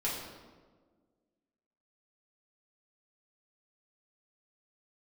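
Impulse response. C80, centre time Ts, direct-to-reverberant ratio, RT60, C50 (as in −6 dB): 4.5 dB, 65 ms, −7.0 dB, 1.5 s, 2.0 dB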